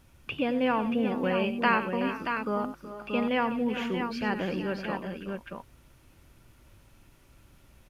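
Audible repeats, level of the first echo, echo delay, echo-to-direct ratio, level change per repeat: 4, −12.5 dB, 94 ms, −4.5 dB, repeats not evenly spaced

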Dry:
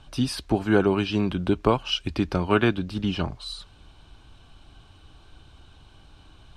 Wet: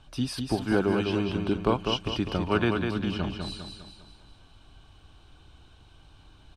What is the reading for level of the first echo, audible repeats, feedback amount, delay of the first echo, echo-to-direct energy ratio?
−5.0 dB, 5, 47%, 200 ms, −4.0 dB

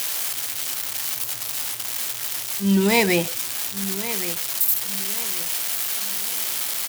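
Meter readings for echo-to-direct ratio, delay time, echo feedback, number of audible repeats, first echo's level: −12.5 dB, 1,118 ms, 34%, 3, −13.0 dB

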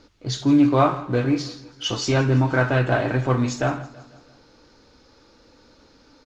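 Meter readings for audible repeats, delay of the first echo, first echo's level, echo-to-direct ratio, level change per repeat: 3, 165 ms, −19.0 dB, −17.5 dB, −5.5 dB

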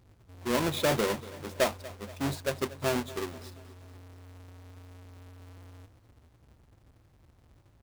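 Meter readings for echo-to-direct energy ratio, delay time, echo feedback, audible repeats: −16.5 dB, 238 ms, 53%, 4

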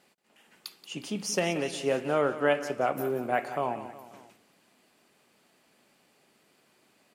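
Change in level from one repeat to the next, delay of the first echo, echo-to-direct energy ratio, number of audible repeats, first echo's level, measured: −5.0 dB, 180 ms, −12.0 dB, 3, −13.5 dB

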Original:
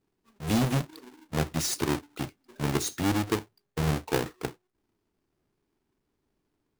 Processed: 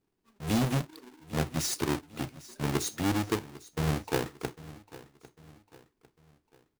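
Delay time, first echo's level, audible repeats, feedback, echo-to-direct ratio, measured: 800 ms, −18.5 dB, 3, 42%, −17.5 dB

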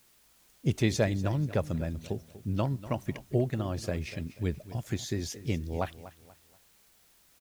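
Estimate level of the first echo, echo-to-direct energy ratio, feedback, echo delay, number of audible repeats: −16.0 dB, −15.5 dB, 33%, 242 ms, 2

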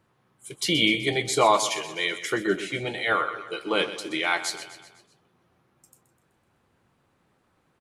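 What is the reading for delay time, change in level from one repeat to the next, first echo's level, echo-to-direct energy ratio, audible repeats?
126 ms, −5.5 dB, −13.0 dB, −11.5 dB, 4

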